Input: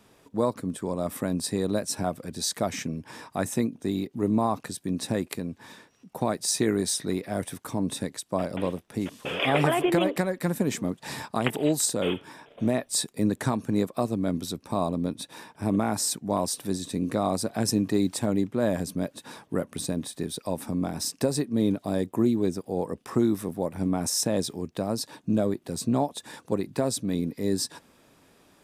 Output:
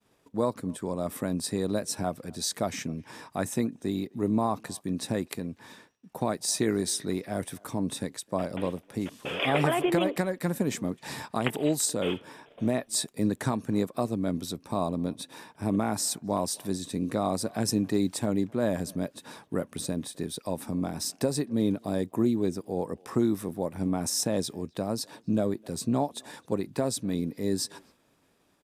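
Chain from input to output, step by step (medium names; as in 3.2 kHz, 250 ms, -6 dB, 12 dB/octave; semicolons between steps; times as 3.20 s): speakerphone echo 260 ms, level -26 dB; expander -52 dBFS; trim -2 dB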